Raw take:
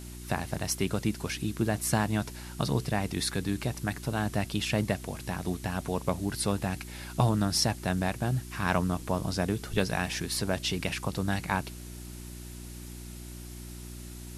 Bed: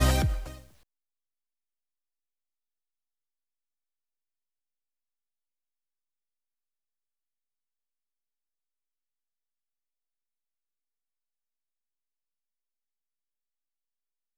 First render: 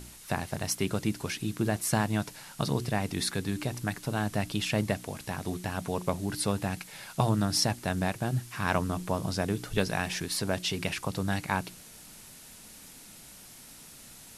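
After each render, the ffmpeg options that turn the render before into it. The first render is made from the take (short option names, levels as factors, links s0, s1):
-af "bandreject=f=60:t=h:w=4,bandreject=f=120:t=h:w=4,bandreject=f=180:t=h:w=4,bandreject=f=240:t=h:w=4,bandreject=f=300:t=h:w=4,bandreject=f=360:t=h:w=4"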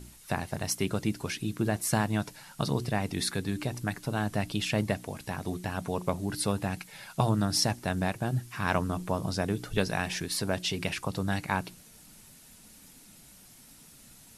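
-af "afftdn=nr=6:nf=-50"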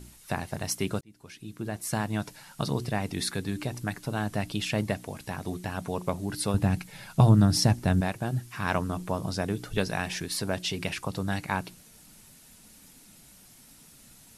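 -filter_complex "[0:a]asettb=1/sr,asplit=3[s0][s1][s2];[s0]atrim=end=6.544[s3];[s1]atrim=start=6.54:end=8.01,asetpts=PTS-STARTPTS,afade=t=in:d=0.004:c=qsin,afade=t=out:st=1.466:d=0.004:c=qsin,lowshelf=f=270:g=11.5[s4];[s2]atrim=start=8.006[s5];[s3][s4]acrossfade=d=0.004:c1=hsin:c2=qsin[s6];[s6][s5]acrossfade=d=0.004:c1=qsin:c2=hsin,asplit=2[s7][s8];[s7]atrim=end=1.01,asetpts=PTS-STARTPTS,afade=t=out:st=1.006:d=0.004:c=hsin[s9];[s8]atrim=start=1.01,asetpts=PTS-STARTPTS,afade=t=in:d=1.3[s10];[s9][s10]concat=n=2:v=0:a=1"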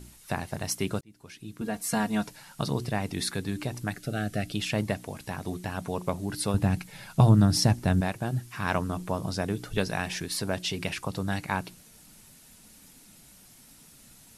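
-filter_complex "[0:a]asettb=1/sr,asplit=3[s0][s1][s2];[s0]atrim=end=1.614[s3];[s1]atrim=start=1.61:end=2.27,asetpts=PTS-STARTPTS,afade=t=in:d=0.004:c=qsin,afade=t=out:st=0.656:d=0.004:c=qsin,aecho=1:1:4.3:0.92,atrim=end_sample=29106[s4];[s2]atrim=start=2.266[s5];[s3][s4]acrossfade=d=0.004:c1=hsin:c2=qsin[s6];[s6][s5]acrossfade=d=0.004:c1=qsin:c2=hsin,asettb=1/sr,asplit=3[s7][s8][s9];[s7]atrim=end=3.954[s10];[s8]atrim=start=3.95:end=4.54,asetpts=PTS-STARTPTS,afade=t=in:d=0.004:c=qsin,afade=t=out:st=0.586:d=0.004:c=qsin,asuperstop=centerf=970:order=8:qfactor=2.2[s11];[s9]atrim=start=4.536[s12];[s10][s11]acrossfade=d=0.004:c1=hsin:c2=qsin[s13];[s13][s12]acrossfade=d=0.004:c1=qsin:c2=hsin"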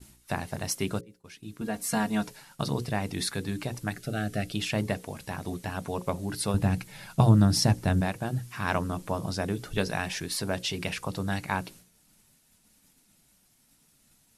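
-af "agate=range=0.0224:threshold=0.00562:ratio=3:detection=peak,bandreject=f=60:t=h:w=6,bandreject=f=120:t=h:w=6,bandreject=f=180:t=h:w=6,bandreject=f=240:t=h:w=6,bandreject=f=300:t=h:w=6,bandreject=f=360:t=h:w=6,bandreject=f=420:t=h:w=6,bandreject=f=480:t=h:w=6,bandreject=f=540:t=h:w=6"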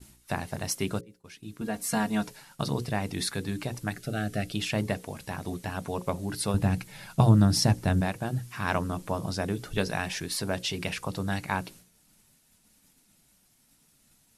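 -af anull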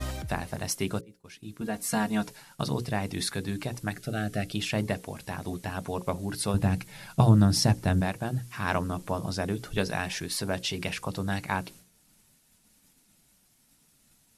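-filter_complex "[1:a]volume=0.266[s0];[0:a][s0]amix=inputs=2:normalize=0"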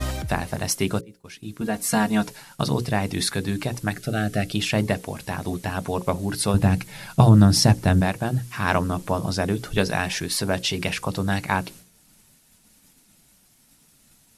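-af "volume=2.11,alimiter=limit=0.708:level=0:latency=1"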